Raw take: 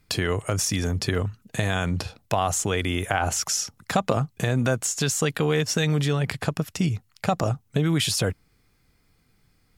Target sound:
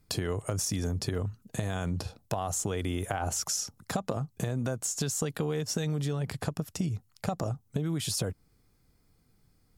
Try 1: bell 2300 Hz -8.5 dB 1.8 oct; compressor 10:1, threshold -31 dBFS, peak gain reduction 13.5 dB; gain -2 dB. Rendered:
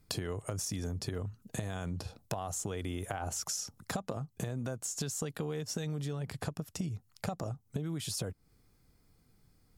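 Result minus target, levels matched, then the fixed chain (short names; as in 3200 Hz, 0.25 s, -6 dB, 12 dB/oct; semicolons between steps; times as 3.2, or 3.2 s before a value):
compressor: peak gain reduction +6 dB
bell 2300 Hz -8.5 dB 1.8 oct; compressor 10:1, threshold -24.5 dBFS, peak gain reduction 8 dB; gain -2 dB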